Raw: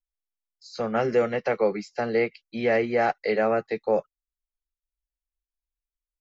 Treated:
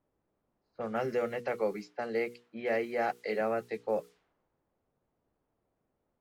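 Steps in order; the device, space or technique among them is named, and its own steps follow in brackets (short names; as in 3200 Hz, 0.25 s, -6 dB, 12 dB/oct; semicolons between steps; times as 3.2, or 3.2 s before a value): notches 60/120/180/240/300/360/420/480 Hz; cassette deck with a dynamic noise filter (white noise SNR 29 dB; low-pass opened by the level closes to 530 Hz, open at -22 dBFS); 1.87–3.41 HPF 140 Hz 12 dB/oct; gain -8 dB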